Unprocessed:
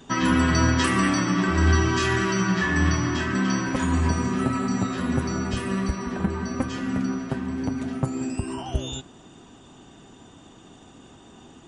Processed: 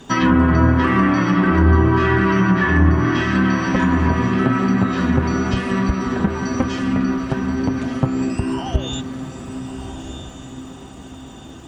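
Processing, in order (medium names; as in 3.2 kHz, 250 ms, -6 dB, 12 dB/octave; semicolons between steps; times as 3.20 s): echo that smears into a reverb 1292 ms, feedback 41%, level -10 dB; low-pass that closes with the level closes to 1.3 kHz, closed at -16 dBFS; crackle 390 per s -54 dBFS; trim +6.5 dB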